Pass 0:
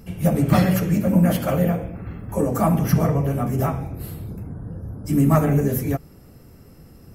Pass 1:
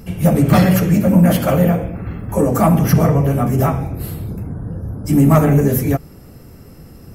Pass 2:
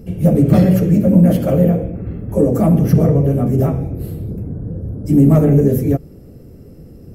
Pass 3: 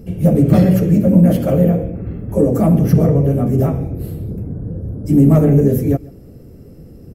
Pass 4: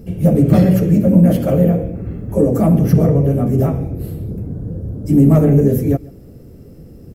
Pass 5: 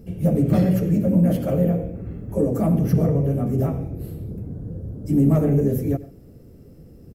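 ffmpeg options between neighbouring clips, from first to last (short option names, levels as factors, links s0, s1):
-af "acontrast=78"
-af "lowshelf=f=680:t=q:w=1.5:g=10,volume=0.335"
-af "aecho=1:1:134:0.075"
-af "acrusher=bits=10:mix=0:aa=0.000001"
-filter_complex "[0:a]asplit=2[s0][s1];[s1]adelay=93.29,volume=0.141,highshelf=f=4000:g=-2.1[s2];[s0][s2]amix=inputs=2:normalize=0,volume=0.447"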